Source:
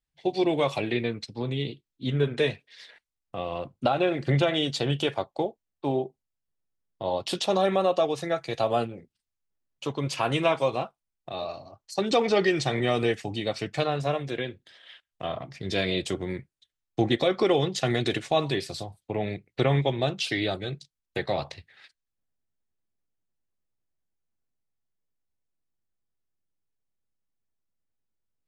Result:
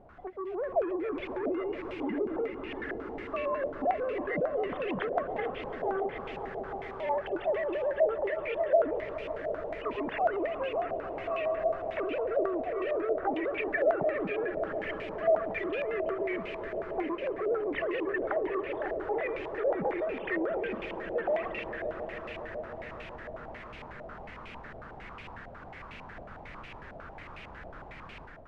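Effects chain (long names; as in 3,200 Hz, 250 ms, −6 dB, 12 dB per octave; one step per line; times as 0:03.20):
three sine waves on the formant tracks
background noise pink −56 dBFS
treble cut that deepens with the level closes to 390 Hz, closed at −20 dBFS
downward compressor, threshold −27 dBFS, peak gain reduction 10 dB
soft clipping −30 dBFS, distortion −13 dB
brickwall limiter −39 dBFS, peak gain reduction 9 dB
on a send: echo that builds up and dies away 140 ms, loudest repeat 5, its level −14 dB
on the sum: automatic gain control gain up to 8 dB
low-pass on a step sequencer 11 Hz 660–2,500 Hz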